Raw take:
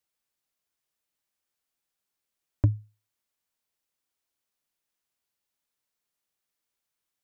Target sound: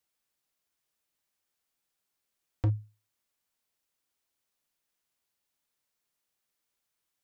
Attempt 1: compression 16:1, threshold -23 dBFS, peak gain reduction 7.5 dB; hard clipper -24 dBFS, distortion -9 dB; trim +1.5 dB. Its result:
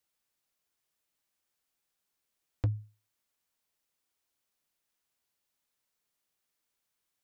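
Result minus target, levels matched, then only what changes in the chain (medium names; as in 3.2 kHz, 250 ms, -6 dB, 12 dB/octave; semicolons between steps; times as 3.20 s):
compression: peak gain reduction +7.5 dB
remove: compression 16:1, threshold -23 dBFS, peak gain reduction 7.5 dB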